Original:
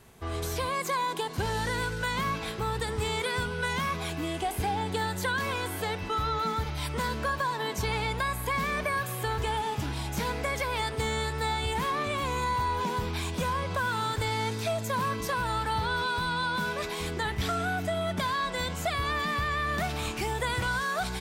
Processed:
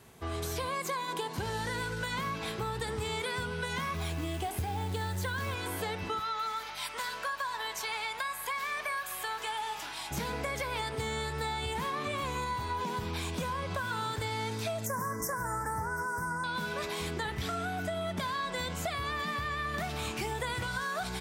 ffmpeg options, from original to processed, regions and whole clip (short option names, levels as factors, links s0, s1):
-filter_complex "[0:a]asettb=1/sr,asplit=3[s0][s1][s2];[s0]atrim=end=3.944[s3];[s1]atrim=start=3.94:end=5.55,asetpts=PTS-STARTPTS,afade=t=in:d=0.004:c=qsin,afade=t=out:st=1.606:d=0.004:c=qsin,equalizer=f=88:w=2.1:g=10.5,acrusher=bits=5:mode=log:mix=0:aa=0.000001[s4];[s2]atrim=start=5.546[s5];[s3][s4]acrossfade=d=0.004:c1=hsin:c2=qsin[s6];[s6][s5]acrossfade=d=0.004:c1=qsin:c2=hsin,asettb=1/sr,asplit=3[s7][s8][s9];[s7]atrim=end=6.194[s10];[s8]atrim=start=6.19:end=10.11,asetpts=PTS-STARTPTS,afade=t=in:d=0.004:c=qsin,afade=t=out:st=3.916:d=0.004:c=qsin,highpass=810,aeval=exprs='val(0)+0.00178*(sin(2*PI*50*n/s)+sin(2*PI*2*50*n/s)/2+sin(2*PI*3*50*n/s)/3+sin(2*PI*4*50*n/s)/4+sin(2*PI*5*50*n/s)/5)':c=same[s11];[s9]atrim=start=10.106[s12];[s10][s11]acrossfade=d=0.004:c1=hsin:c2=qsin[s13];[s13][s12]acrossfade=d=0.004:c1=qsin:c2=hsin,asettb=1/sr,asplit=3[s14][s15][s16];[s14]atrim=end=14.864[s17];[s15]atrim=start=14.86:end=16.44,asetpts=PTS-STARTPTS,afade=t=in:d=0.004:c=qsin,afade=t=out:st=1.576:d=0.004:c=qsin,asuperstop=centerf=3300:order=12:qfactor=0.98,highshelf=f=5300:g=10.5[s18];[s16]atrim=start=16.436[s19];[s17][s18]acrossfade=d=0.004:c1=hsin:c2=qsin[s20];[s20][s19]acrossfade=d=0.004:c1=qsin:c2=hsin,highpass=68,bandreject=f=98.85:t=h:w=4,bandreject=f=197.7:t=h:w=4,bandreject=f=296.55:t=h:w=4,bandreject=f=395.4:t=h:w=4,bandreject=f=494.25:t=h:w=4,bandreject=f=593.1:t=h:w=4,bandreject=f=691.95:t=h:w=4,bandreject=f=790.8:t=h:w=4,bandreject=f=889.65:t=h:w=4,bandreject=f=988.5:t=h:w=4,bandreject=f=1087.35:t=h:w=4,bandreject=f=1186.2:t=h:w=4,bandreject=f=1285.05:t=h:w=4,bandreject=f=1383.9:t=h:w=4,bandreject=f=1482.75:t=h:w=4,bandreject=f=1581.6:t=h:w=4,bandreject=f=1680.45:t=h:w=4,bandreject=f=1779.3:t=h:w=4,bandreject=f=1878.15:t=h:w=4,bandreject=f=1977:t=h:w=4,bandreject=f=2075.85:t=h:w=4,bandreject=f=2174.7:t=h:w=4,bandreject=f=2273.55:t=h:w=4,bandreject=f=2372.4:t=h:w=4,bandreject=f=2471.25:t=h:w=4,bandreject=f=2570.1:t=h:w=4,bandreject=f=2668.95:t=h:w=4,bandreject=f=2767.8:t=h:w=4,bandreject=f=2866.65:t=h:w=4,acompressor=threshold=0.0282:ratio=6"